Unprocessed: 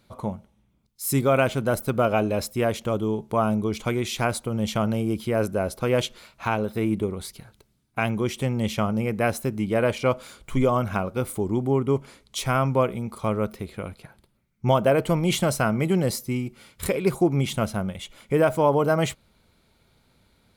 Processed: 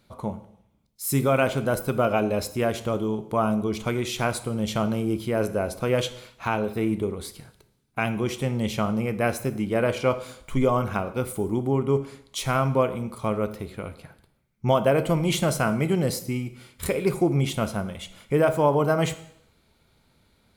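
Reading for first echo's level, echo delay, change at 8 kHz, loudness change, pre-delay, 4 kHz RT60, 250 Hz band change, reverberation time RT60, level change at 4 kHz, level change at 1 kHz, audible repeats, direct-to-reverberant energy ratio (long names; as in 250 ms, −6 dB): no echo audible, no echo audible, −0.5 dB, −0.5 dB, 5 ms, 0.70 s, −0.5 dB, 0.70 s, −0.5 dB, −0.5 dB, no echo audible, 10.5 dB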